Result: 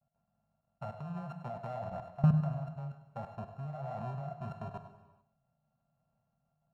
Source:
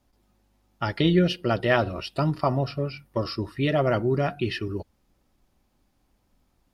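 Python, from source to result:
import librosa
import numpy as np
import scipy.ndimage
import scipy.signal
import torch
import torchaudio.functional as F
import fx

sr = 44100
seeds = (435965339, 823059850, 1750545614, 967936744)

p1 = np.r_[np.sort(x[:len(x) // 32 * 32].reshape(-1, 32), axis=1).ravel(), x[len(x) // 32 * 32:]]
p2 = fx.peak_eq(p1, sr, hz=230.0, db=6.0, octaves=0.35)
p3 = fx.rider(p2, sr, range_db=10, speed_s=2.0)
p4 = p2 + (p3 * librosa.db_to_amplitude(-1.0))
p5 = fx.double_bandpass(p4, sr, hz=320.0, octaves=2.2)
p6 = fx.level_steps(p5, sr, step_db=20)
p7 = p6 + fx.echo_single(p6, sr, ms=99, db=-12.5, dry=0)
y = fx.rev_gated(p7, sr, seeds[0], gate_ms=460, shape='falling', drr_db=8.5)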